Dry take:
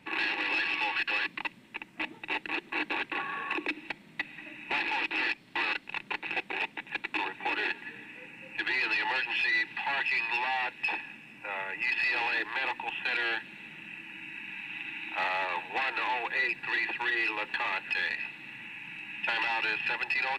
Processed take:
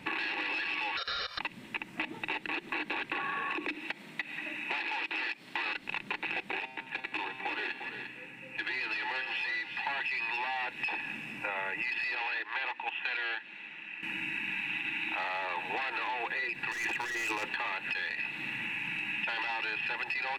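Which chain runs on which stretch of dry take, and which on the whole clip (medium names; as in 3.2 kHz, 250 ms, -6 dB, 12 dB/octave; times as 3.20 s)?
0.97–1.39 s: high-order bell 3.4 kHz +13.5 dB 1 oct + comb 1.7 ms, depth 85% + ring modulator 1.2 kHz
3.75–5.66 s: high-pass 320 Hz 6 dB/octave + compression 1.5:1, threshold -45 dBFS
6.60–9.87 s: feedback comb 130 Hz, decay 1.1 s, mix 70% + delay 350 ms -11.5 dB
12.15–14.03 s: high-pass 740 Hz 6 dB/octave + distance through air 110 m + upward expansion, over -42 dBFS
16.71–17.49 s: hard clipper -30 dBFS + compressor with a negative ratio -36 dBFS, ratio -0.5
whole clip: peak limiter -26.5 dBFS; compression, threshold -40 dBFS; trim +8.5 dB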